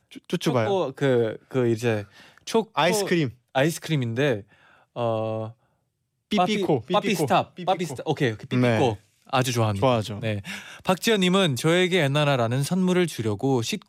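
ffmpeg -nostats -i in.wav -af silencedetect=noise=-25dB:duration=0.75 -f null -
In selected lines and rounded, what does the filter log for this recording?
silence_start: 5.44
silence_end: 6.32 | silence_duration: 0.88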